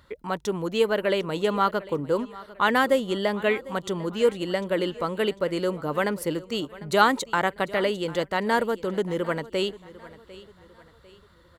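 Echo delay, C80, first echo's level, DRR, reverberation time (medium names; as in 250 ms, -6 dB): 749 ms, no reverb, -19.0 dB, no reverb, no reverb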